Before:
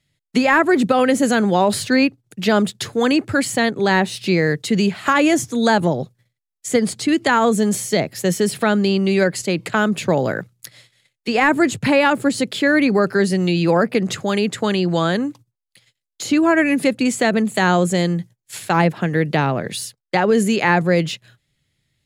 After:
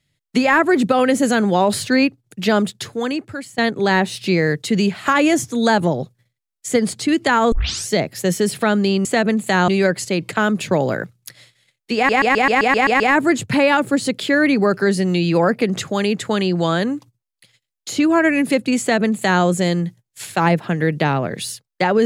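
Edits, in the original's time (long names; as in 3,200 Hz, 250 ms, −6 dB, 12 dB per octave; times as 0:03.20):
0:02.50–0:03.58: fade out, to −19 dB
0:07.52: tape start 0.37 s
0:11.33: stutter 0.13 s, 9 plays
0:17.13–0:17.76: duplicate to 0:09.05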